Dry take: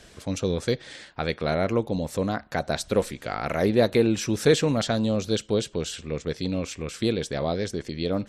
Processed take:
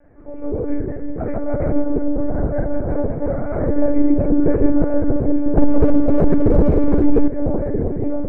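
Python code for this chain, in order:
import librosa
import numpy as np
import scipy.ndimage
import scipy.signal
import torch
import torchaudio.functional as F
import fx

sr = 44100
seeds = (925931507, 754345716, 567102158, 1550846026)

p1 = fx.reverse_delay(x, sr, ms=183, wet_db=-2)
p2 = scipy.signal.sosfilt(scipy.signal.ellip(4, 1.0, 60, 230.0, 'highpass', fs=sr, output='sos'), p1)
p3 = np.clip(10.0 ** (21.5 / 20.0) * p2, -1.0, 1.0) / 10.0 ** (21.5 / 20.0)
p4 = p2 + (p3 * librosa.db_to_amplitude(-12.0))
p5 = scipy.signal.sosfilt(scipy.signal.butter(8, 2200.0, 'lowpass', fs=sr, output='sos'), p4)
p6 = p5 + fx.echo_opening(p5, sr, ms=324, hz=400, octaves=1, feedback_pct=70, wet_db=-3, dry=0)
p7 = fx.rev_fdn(p6, sr, rt60_s=0.54, lf_ratio=0.8, hf_ratio=0.35, size_ms=26.0, drr_db=-3.5)
p8 = fx.lpc_monotone(p7, sr, seeds[0], pitch_hz=290.0, order=10)
p9 = fx.leveller(p8, sr, passes=3, at=(5.57, 7.28))
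p10 = fx.tilt_shelf(p9, sr, db=10.0, hz=1100.0)
p11 = fx.band_squash(p10, sr, depth_pct=40, at=(2.2, 2.95))
y = p11 * librosa.db_to_amplitude(-10.5)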